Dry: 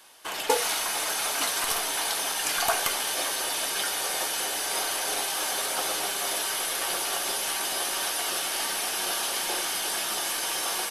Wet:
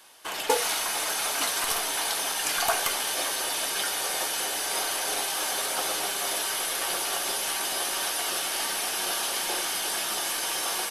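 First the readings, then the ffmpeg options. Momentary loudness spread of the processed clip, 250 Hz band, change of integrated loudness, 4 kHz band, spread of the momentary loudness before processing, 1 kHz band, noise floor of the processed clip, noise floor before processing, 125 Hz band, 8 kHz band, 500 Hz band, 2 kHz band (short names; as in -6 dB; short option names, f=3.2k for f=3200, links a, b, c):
2 LU, 0.0 dB, 0.0 dB, 0.0 dB, 2 LU, 0.0 dB, -31 dBFS, -31 dBFS, 0.0 dB, 0.0 dB, 0.0 dB, 0.0 dB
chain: -af "asoftclip=type=hard:threshold=-12dB"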